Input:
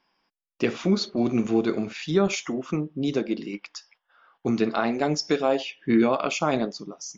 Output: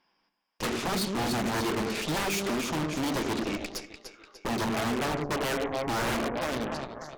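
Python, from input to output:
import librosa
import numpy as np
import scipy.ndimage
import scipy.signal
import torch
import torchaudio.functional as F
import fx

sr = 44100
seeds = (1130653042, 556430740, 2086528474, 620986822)

y = fx.fade_out_tail(x, sr, length_s=1.22)
y = fx.brickwall_lowpass(y, sr, high_hz=1200.0, at=(4.61, 6.5))
y = fx.echo_split(y, sr, split_hz=460.0, low_ms=101, high_ms=296, feedback_pct=52, wet_db=-8.5)
y = 10.0 ** (-23.0 / 20.0) * (np.abs((y / 10.0 ** (-23.0 / 20.0) + 3.0) % 4.0 - 2.0) - 1.0)
y = fx.cheby_harmonics(y, sr, harmonics=(6,), levels_db=(-10,), full_scale_db=-23.0)
y = F.gain(torch.from_numpy(y), -1.0).numpy()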